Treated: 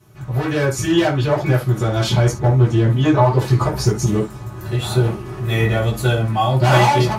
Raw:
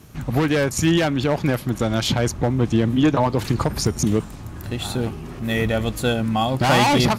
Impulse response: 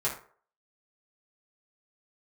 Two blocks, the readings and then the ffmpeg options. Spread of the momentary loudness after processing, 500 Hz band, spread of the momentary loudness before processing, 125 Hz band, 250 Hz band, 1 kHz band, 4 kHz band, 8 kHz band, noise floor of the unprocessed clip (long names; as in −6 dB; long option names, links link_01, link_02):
8 LU, +3.0 dB, 9 LU, +7.0 dB, −0.5 dB, +3.5 dB, −0.5 dB, −1.0 dB, −35 dBFS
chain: -filter_complex "[0:a]dynaudnorm=framelen=190:gausssize=5:maxgain=11.5dB[link_01];[1:a]atrim=start_sample=2205,atrim=end_sample=3528,asetrate=41013,aresample=44100[link_02];[link_01][link_02]afir=irnorm=-1:irlink=0,volume=-11.5dB"